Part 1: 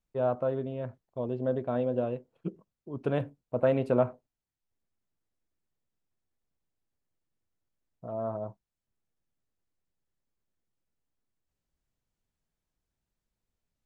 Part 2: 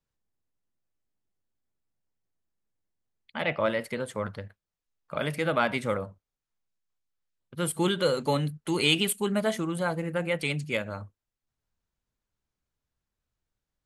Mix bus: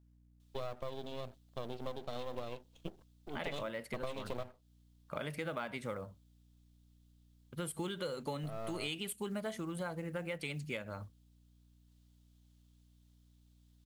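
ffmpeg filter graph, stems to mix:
-filter_complex "[0:a]highpass=f=260:p=1,highshelf=f=2.4k:t=q:w=3:g=12,aeval=exprs='max(val(0),0)':c=same,adelay=400,volume=3dB[a];[1:a]aeval=exprs='val(0)+0.001*(sin(2*PI*60*n/s)+sin(2*PI*2*60*n/s)/2+sin(2*PI*3*60*n/s)/3+sin(2*PI*4*60*n/s)/4+sin(2*PI*5*60*n/s)/5)':c=same,volume=-4dB[b];[a][b]amix=inputs=2:normalize=0,acrusher=bits=8:mode=log:mix=0:aa=0.000001,acompressor=threshold=-37dB:ratio=5"

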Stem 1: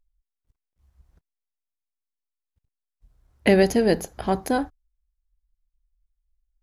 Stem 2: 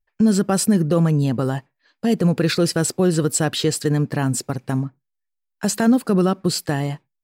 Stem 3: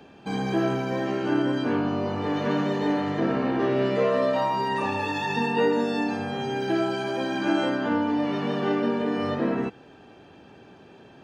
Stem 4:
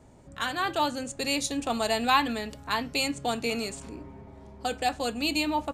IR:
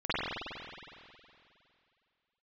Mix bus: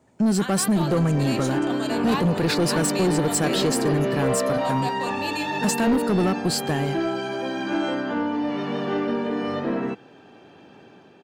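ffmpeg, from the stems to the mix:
-filter_complex "[0:a]alimiter=limit=-11.5dB:level=0:latency=1,volume=-8.5dB[a];[1:a]volume=-0.5dB[b];[2:a]dynaudnorm=f=220:g=7:m=12dB,adelay=250,volume=-9.5dB[c];[3:a]volume=-4dB[d];[a][b][c][d]amix=inputs=4:normalize=0,highpass=120,asoftclip=type=tanh:threshold=-15dB"

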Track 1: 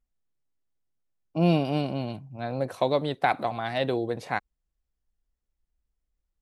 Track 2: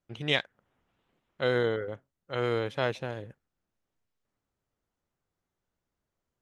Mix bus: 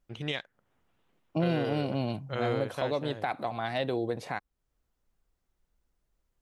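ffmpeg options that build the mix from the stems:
-filter_complex "[0:a]volume=2dB[a];[1:a]volume=0dB[b];[a][b]amix=inputs=2:normalize=0,alimiter=limit=-19dB:level=0:latency=1:release=406"

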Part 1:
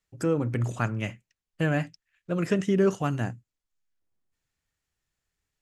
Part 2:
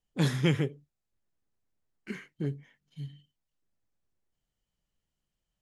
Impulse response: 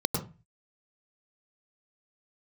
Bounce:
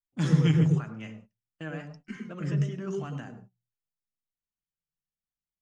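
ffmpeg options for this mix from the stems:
-filter_complex "[0:a]alimiter=limit=-20.5dB:level=0:latency=1:release=102,acrossover=split=240 7500:gain=0.2 1 0.0631[a][b][c];[a][b][c]amix=inputs=3:normalize=0,volume=0dB,asplit=2[d][e];[e]volume=-17dB[f];[1:a]lowpass=f=8.4k:w=0.5412,lowpass=f=8.4k:w=1.3066,volume=2.5dB,asplit=2[g][h];[h]volume=-14.5dB[i];[2:a]atrim=start_sample=2205[j];[f][i]amix=inputs=2:normalize=0[k];[k][j]afir=irnorm=-1:irlink=0[l];[d][g][l]amix=inputs=3:normalize=0,agate=range=-19dB:threshold=-45dB:ratio=16:detection=peak,flanger=delay=3.8:depth=2.7:regen=61:speed=0.93:shape=sinusoidal"

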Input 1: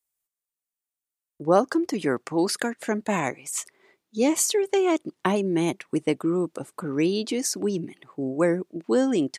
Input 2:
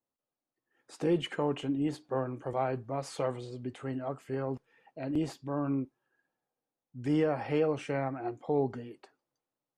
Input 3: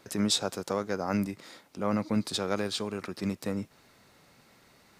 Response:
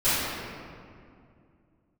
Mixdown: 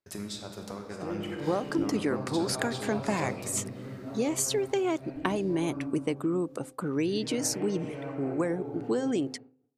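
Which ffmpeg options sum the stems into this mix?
-filter_complex "[0:a]acompressor=threshold=-24dB:ratio=6,volume=-1dB[a];[1:a]acompressor=threshold=-33dB:ratio=2.5,volume=-4.5dB,asplit=2[b][c];[c]volume=-16dB[d];[2:a]acompressor=threshold=-36dB:ratio=10,volume=-1.5dB,asplit=3[e][f][g];[f]volume=-18dB[h];[g]apad=whole_len=430872[i];[b][i]sidechaingate=range=-33dB:threshold=-49dB:ratio=16:detection=peak[j];[3:a]atrim=start_sample=2205[k];[d][h]amix=inputs=2:normalize=0[l];[l][k]afir=irnorm=-1:irlink=0[m];[a][j][e][m]amix=inputs=4:normalize=0,agate=range=-33dB:threshold=-41dB:ratio=3:detection=peak,equalizer=f=81:w=2.2:g=7,bandreject=f=258.7:t=h:w=4,bandreject=f=517.4:t=h:w=4,bandreject=f=776.1:t=h:w=4"

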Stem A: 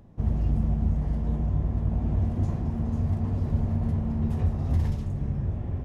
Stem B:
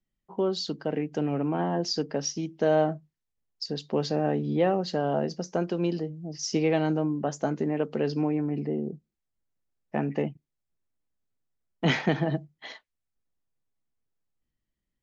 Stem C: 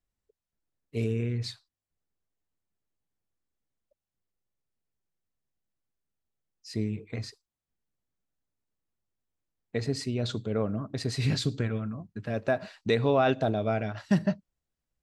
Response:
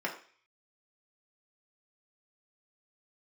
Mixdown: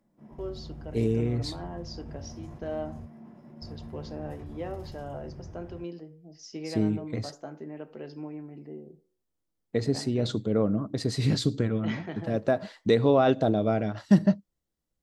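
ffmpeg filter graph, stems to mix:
-filter_complex "[0:a]aemphasis=mode=production:type=cd,alimiter=limit=-21.5dB:level=0:latency=1:release=13,volume=-15dB,asplit=2[a][b];[b]volume=-5dB[c];[1:a]volume=-16dB,asplit=3[d][e][f];[e]volume=-8.5dB[g];[2:a]equalizer=f=200:t=o:w=0.33:g=5,equalizer=f=315:t=o:w=0.33:g=7,equalizer=f=500:t=o:w=0.33:g=4,equalizer=f=1.6k:t=o:w=0.33:g=-4,equalizer=f=2.5k:t=o:w=0.33:g=-7,volume=1dB[h];[f]apad=whole_len=257822[i];[a][i]sidechaingate=range=-33dB:threshold=-59dB:ratio=16:detection=peak[j];[3:a]atrim=start_sample=2205[k];[c][g]amix=inputs=2:normalize=0[l];[l][k]afir=irnorm=-1:irlink=0[m];[j][d][h][m]amix=inputs=4:normalize=0"

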